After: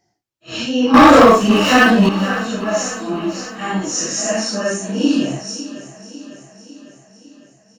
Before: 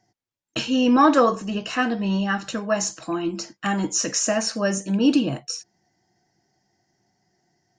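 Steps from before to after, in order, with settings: phase scrambler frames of 0.2 s; 0.94–2.09 sample leveller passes 3; feedback echo 0.552 s, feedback 59%, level -15 dB; gain +3 dB

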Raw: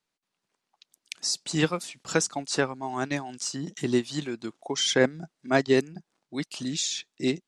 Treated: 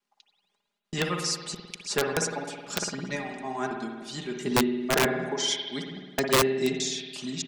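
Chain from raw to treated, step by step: slices in reverse order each 0.309 s, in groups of 3; notches 50/100/150 Hz; comb 4.9 ms, depth 69%; spring tank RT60 1.4 s, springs 53 ms, chirp 45 ms, DRR 2.5 dB; wrapped overs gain 11 dB; gain -3.5 dB

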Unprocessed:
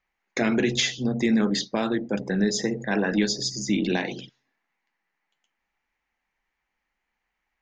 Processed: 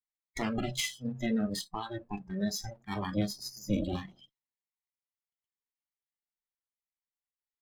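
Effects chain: minimum comb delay 0.97 ms; spectral noise reduction 21 dB; 0.68–2.25 small resonant body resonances 1700/2600 Hz, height 11 dB; 3.16–4.16 tilt shelf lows +4.5 dB, about 940 Hz; gain -7 dB

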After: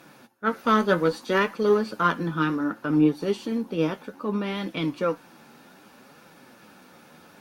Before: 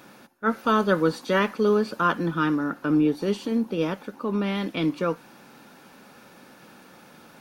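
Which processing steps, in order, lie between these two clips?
added harmonics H 3 -19 dB, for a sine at -9 dBFS; flange 0.64 Hz, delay 5.7 ms, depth 7.8 ms, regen +44%; gain +6 dB

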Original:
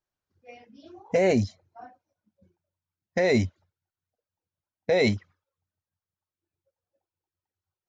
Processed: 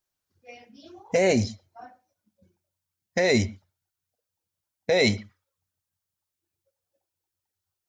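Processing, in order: high shelf 3300 Hz +10.5 dB; on a send: reverb, pre-delay 33 ms, DRR 18.5 dB

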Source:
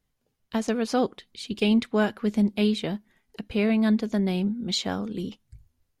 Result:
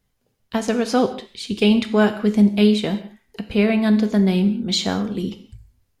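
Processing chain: non-linear reverb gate 0.23 s falling, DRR 8 dB; gain +5.5 dB

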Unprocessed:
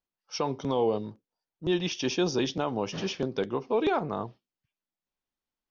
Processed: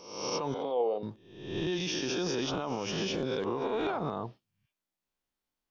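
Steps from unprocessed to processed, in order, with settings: spectral swells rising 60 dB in 0.79 s; limiter -23.5 dBFS, peak gain reduction 11 dB; 0.54–1.03 speaker cabinet 390–3700 Hz, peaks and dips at 500 Hz +7 dB, 730 Hz +7 dB, 1100 Hz -9 dB, 1700 Hz -7 dB, 3200 Hz -4 dB

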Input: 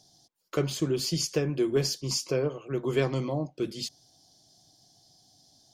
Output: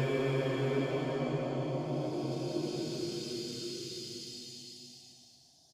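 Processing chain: downsampling 32000 Hz; Paulstretch 4.2×, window 1.00 s, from 2.97; gain -3.5 dB

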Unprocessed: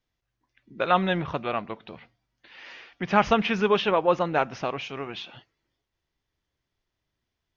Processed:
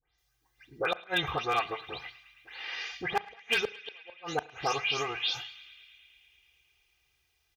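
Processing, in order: spectral delay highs late, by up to 0.181 s; in parallel at +1.5 dB: compressor 8:1, threshold -35 dBFS, peak gain reduction 19 dB; on the sum: comb 2.5 ms, depth 93%; flipped gate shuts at -10 dBFS, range -40 dB; bell 290 Hz -11 dB 1.2 oct; hard clip -17 dBFS, distortion -23 dB; HPF 46 Hz; high shelf 5200 Hz +11 dB; narrowing echo 0.109 s, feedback 83%, band-pass 2400 Hz, level -18 dB; on a send at -19 dB: reverb, pre-delay 34 ms; on the sum: gain -3.5 dB

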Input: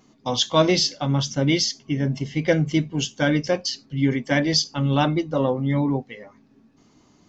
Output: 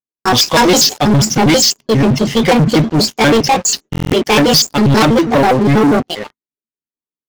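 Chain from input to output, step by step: trilling pitch shifter +7 st, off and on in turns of 81 ms; gate -45 dBFS, range -37 dB; downsampling 16000 Hz; sample leveller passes 5; stuck buffer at 3.91, samples 1024, times 8

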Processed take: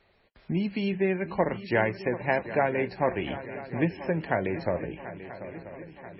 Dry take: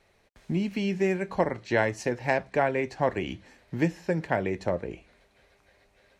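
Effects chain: on a send: swung echo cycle 0.985 s, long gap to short 3:1, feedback 56%, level -14 dB; on the sum: MP3 16 kbps 22050 Hz

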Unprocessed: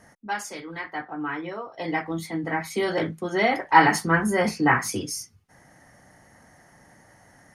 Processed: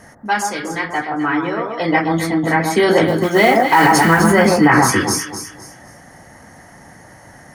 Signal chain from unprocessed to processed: 3.07–4.32 modulation noise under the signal 23 dB; on a send: echo with dull and thin repeats by turns 0.128 s, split 1300 Hz, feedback 55%, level -4 dB; on the sum: maximiser +12 dB; gain -1 dB

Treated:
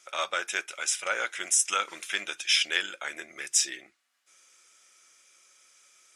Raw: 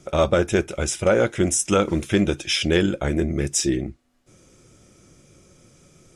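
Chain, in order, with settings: Chebyshev high-pass 1600 Hz, order 2

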